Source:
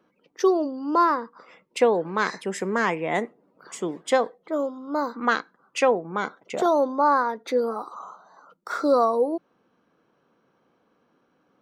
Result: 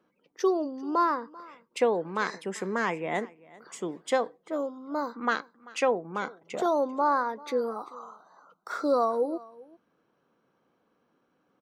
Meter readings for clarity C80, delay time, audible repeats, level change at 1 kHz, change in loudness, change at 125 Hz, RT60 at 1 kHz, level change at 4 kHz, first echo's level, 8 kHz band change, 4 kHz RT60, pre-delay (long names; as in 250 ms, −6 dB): no reverb audible, 390 ms, 1, −5.0 dB, −5.0 dB, −5.0 dB, no reverb audible, −5.0 dB, −22.0 dB, −5.0 dB, no reverb audible, no reverb audible